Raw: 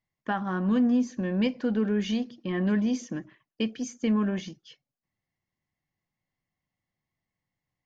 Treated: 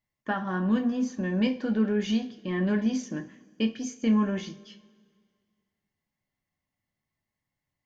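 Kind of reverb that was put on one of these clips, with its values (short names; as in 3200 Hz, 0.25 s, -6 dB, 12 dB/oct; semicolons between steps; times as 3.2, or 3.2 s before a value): two-slope reverb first 0.31 s, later 2.1 s, from -22 dB, DRR 4 dB; gain -1 dB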